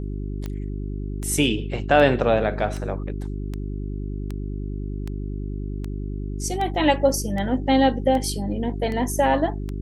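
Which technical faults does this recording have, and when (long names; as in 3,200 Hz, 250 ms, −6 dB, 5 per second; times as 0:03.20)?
mains hum 50 Hz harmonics 8 −29 dBFS
scratch tick 78 rpm −18 dBFS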